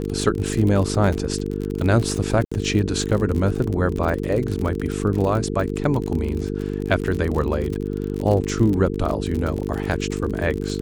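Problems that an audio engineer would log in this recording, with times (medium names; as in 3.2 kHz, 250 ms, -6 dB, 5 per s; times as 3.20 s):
buzz 50 Hz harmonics 9 -26 dBFS
crackle 43 per s -24 dBFS
2.45–2.52 s: dropout 65 ms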